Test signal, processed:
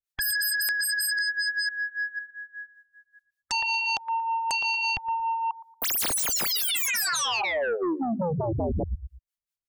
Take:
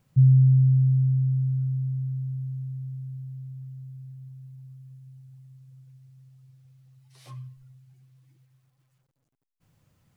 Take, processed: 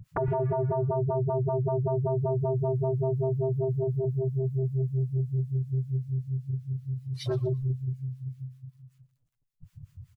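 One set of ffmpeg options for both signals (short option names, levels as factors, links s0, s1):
-filter_complex "[0:a]asplit=2[s0][s1];[s1]alimiter=limit=0.0944:level=0:latency=1:release=334,volume=1[s2];[s0][s2]amix=inputs=2:normalize=0,bandreject=f=800:w=12,volume=4.22,asoftclip=hard,volume=0.237,acrossover=split=800[s3][s4];[s3]aeval=exprs='val(0)*(1-1/2+1/2*cos(2*PI*5.2*n/s))':c=same[s5];[s4]aeval=exprs='val(0)*(1-1/2-1/2*cos(2*PI*5.2*n/s))':c=same[s6];[s5][s6]amix=inputs=2:normalize=0,afftdn=nr=24:nf=-47,lowshelf=f=170:g=8,acompressor=threshold=0.0447:ratio=10,equalizer=f=360:t=o:w=2.4:g=-14,asplit=2[s7][s8];[s8]aecho=0:1:116|232|348:0.126|0.0403|0.0129[s9];[s7][s9]amix=inputs=2:normalize=0,aeval=exprs='0.0668*sin(PI/2*7.94*val(0)/0.0668)':c=same"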